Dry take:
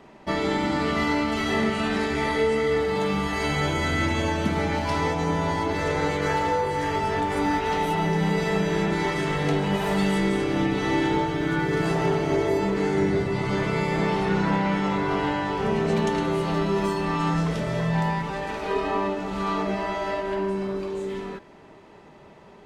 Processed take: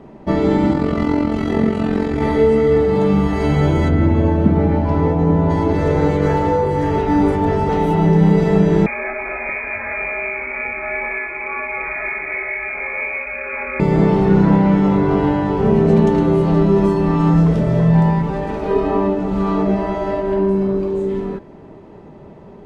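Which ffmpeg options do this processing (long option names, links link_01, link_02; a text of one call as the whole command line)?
ffmpeg -i in.wav -filter_complex "[0:a]asettb=1/sr,asplit=3[link_01][link_02][link_03];[link_01]atrim=end=0.734[link_04];[link_02]atrim=start=0.73:end=2.22,asetpts=PTS-STARTPTS,afade=type=in:duration=0.004:curve=qsin,afade=type=out:start_time=1.486:duration=0.004:curve=qsin,tremolo=f=44:d=0.667[link_05];[link_03]atrim=start=2.216[link_06];[link_04][link_05]acrossfade=duration=0.004:curve1=hsin:curve2=qsin[link_07];[link_07][link_06]acrossfade=duration=0.004:curve1=qsin:curve2=hsin,asplit=3[link_08][link_09][link_10];[link_08]afade=type=out:start_time=3.88:duration=0.02[link_11];[link_09]lowpass=frequency=1400:poles=1,afade=type=in:start_time=3.88:duration=0.02,afade=type=out:start_time=5.49:duration=0.02[link_12];[link_10]afade=type=in:start_time=5.49:duration=0.02[link_13];[link_11][link_12][link_13]amix=inputs=3:normalize=0,asettb=1/sr,asplit=3[link_14][link_15][link_16];[link_14]atrim=end=8.864[link_17];[link_15]atrim=start=8.86:end=13.8,asetpts=PTS-STARTPTS,afade=type=in:duration=0.004:curve=qsin,afade=type=out:start_time=4.936:duration=0.004:curve=qsin,lowpass=frequency=2200:width_type=q:width=0.5098,lowpass=frequency=2200:width_type=q:width=0.6013,lowpass=frequency=2200:width_type=q:width=0.9,lowpass=frequency=2200:width_type=q:width=2.563,afreqshift=-2600[link_18];[link_16]atrim=start=13.796[link_19];[link_17][link_18]acrossfade=duration=0.004:curve1=hsin:curve2=qsin[link_20];[link_20][link_19]acrossfade=duration=0.004:curve1=qsin:curve2=hsin,asplit=3[link_21][link_22][link_23];[link_21]atrim=end=6.982[link_24];[link_22]atrim=start=6.978:end=7.692,asetpts=PTS-STARTPTS,areverse[link_25];[link_23]atrim=start=7.688[link_26];[link_24][link_25]acrossfade=duration=0.004:curve1=hsin:curve2=hsin[link_27];[link_27][link_26]acrossfade=duration=0.004:curve1=hsin:curve2=hsin,tiltshelf=frequency=920:gain=9,volume=4dB" out.wav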